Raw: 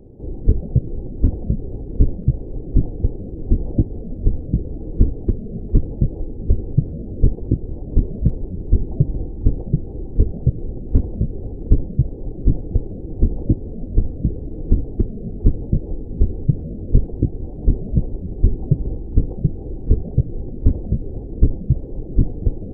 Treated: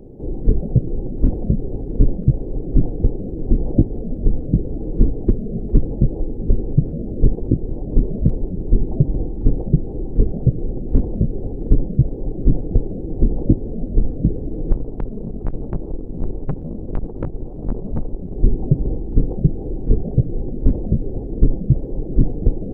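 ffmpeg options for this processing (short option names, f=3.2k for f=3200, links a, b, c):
-filter_complex "[0:a]asettb=1/sr,asplit=3[a][b][c];[a]atrim=end=14.724[d];[b]atrim=start=14.72:end=18.35,asetpts=PTS-STARTPTS,afade=t=in:d=0.004:c=qsin,afade=t=out:st=3.626:d=0.004:c=qsin,aeval=exprs='(tanh(11.2*val(0)+0.7)-tanh(0.7))/11.2':c=same[e];[c]atrim=start=18.346[f];[d][e]acrossfade=d=0.004:c1=hsin:c2=qsin[g];[g][f]acrossfade=d=0.004:c1=qsin:c2=hsin,equalizer=f=77:t=o:w=0.84:g=-8,alimiter=level_in=6dB:limit=-1dB:release=50:level=0:latency=1,volume=-1dB"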